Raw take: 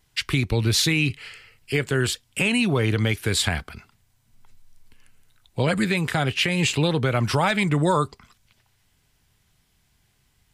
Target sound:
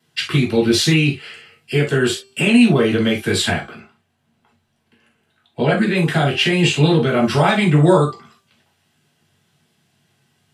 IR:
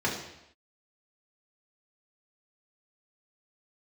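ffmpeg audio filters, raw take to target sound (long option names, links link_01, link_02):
-filter_complex "[0:a]asettb=1/sr,asplit=3[link_01][link_02][link_03];[link_01]atrim=end=3.534[link_04];[link_02]atrim=start=3.53:end=5.95,asetpts=PTS-STARTPTS,afade=type=in:duration=0.004:curve=qsin,afade=type=out:start_time=2.416:duration=0.004:curve=qsin,bass=frequency=250:gain=-3,treble=frequency=4000:gain=-9[link_05];[link_03]atrim=start=5.946[link_06];[link_04][link_05]acrossfade=duration=0.004:curve1=hsin:curve2=qsin[link_07];[link_07][link_06]acrossfade=duration=0.004:curve1=qsin:curve2=hsin,bandreject=frequency=392.3:width_type=h:width=4,bandreject=frequency=784.6:width_type=h:width=4,bandreject=frequency=1176.9:width_type=h:width=4,bandreject=frequency=1569.2:width_type=h:width=4,bandreject=frequency=1961.5:width_type=h:width=4,bandreject=frequency=2353.8:width_type=h:width=4,bandreject=frequency=2746.1:width_type=h:width=4,bandreject=frequency=3138.4:width_type=h:width=4,bandreject=frequency=3530.7:width_type=h:width=4,bandreject=frequency=3923:width_type=h:width=4,bandreject=frequency=4315.3:width_type=h:width=4,bandreject=frequency=4707.6:width_type=h:width=4,bandreject=frequency=5099.9:width_type=h:width=4,bandreject=frequency=5492.2:width_type=h:width=4,bandreject=frequency=5884.5:width_type=h:width=4,bandreject=frequency=6276.8:width_type=h:width=4,bandreject=frequency=6669.1:width_type=h:width=4,bandreject=frequency=7061.4:width_type=h:width=4,bandreject=frequency=7453.7:width_type=h:width=4,bandreject=frequency=7846:width_type=h:width=4,bandreject=frequency=8238.3:width_type=h:width=4[link_08];[1:a]atrim=start_sample=2205,atrim=end_sample=6174,asetrate=74970,aresample=44100[link_09];[link_08][link_09]afir=irnorm=-1:irlink=0,volume=-1dB"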